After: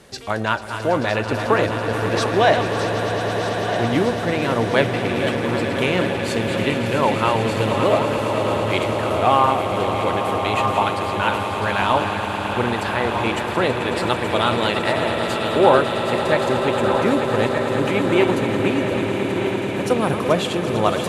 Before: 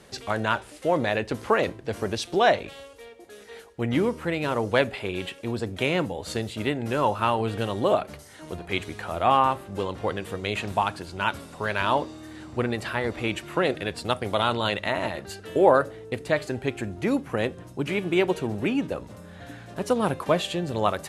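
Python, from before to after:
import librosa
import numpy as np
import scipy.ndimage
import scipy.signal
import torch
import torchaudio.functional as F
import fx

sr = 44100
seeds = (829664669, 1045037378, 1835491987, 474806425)

y = fx.reverse_delay_fb(x, sr, ms=628, feedback_pct=67, wet_db=-8)
y = fx.echo_swell(y, sr, ms=110, loudest=8, wet_db=-13)
y = F.gain(torch.from_numpy(y), 3.5).numpy()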